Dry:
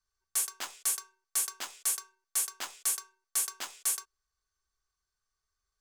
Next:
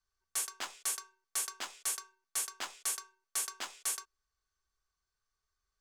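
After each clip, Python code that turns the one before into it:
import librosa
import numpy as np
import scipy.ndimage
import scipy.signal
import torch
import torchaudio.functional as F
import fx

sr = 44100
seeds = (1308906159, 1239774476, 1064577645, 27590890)

y = fx.high_shelf(x, sr, hz=9800.0, db=-11.5)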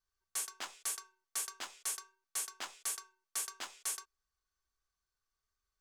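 y = fx.vibrato(x, sr, rate_hz=1.5, depth_cents=14.0)
y = y * librosa.db_to_amplitude(-3.0)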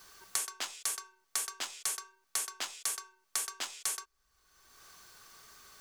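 y = fx.band_squash(x, sr, depth_pct=100)
y = y * librosa.db_to_amplitude(4.0)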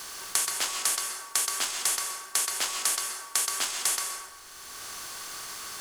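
y = fx.bin_compress(x, sr, power=0.6)
y = fx.rev_plate(y, sr, seeds[0], rt60_s=1.2, hf_ratio=0.55, predelay_ms=115, drr_db=3.5)
y = y * librosa.db_to_amplitude(5.0)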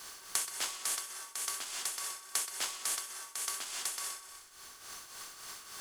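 y = fx.echo_wet_highpass(x, sr, ms=62, feedback_pct=74, hz=2000.0, wet_db=-11.0)
y = fx.tremolo_shape(y, sr, shape='triangle', hz=3.5, depth_pct=65)
y = y * librosa.db_to_amplitude(-6.0)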